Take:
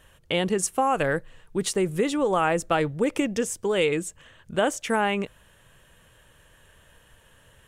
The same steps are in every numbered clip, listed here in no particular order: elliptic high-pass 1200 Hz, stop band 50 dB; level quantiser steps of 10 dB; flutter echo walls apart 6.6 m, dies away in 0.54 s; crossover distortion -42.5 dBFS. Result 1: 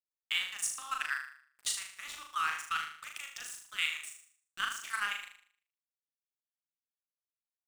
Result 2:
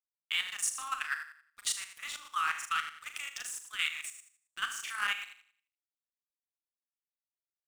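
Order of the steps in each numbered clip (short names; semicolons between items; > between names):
elliptic high-pass > level quantiser > crossover distortion > flutter echo; elliptic high-pass > crossover distortion > flutter echo > level quantiser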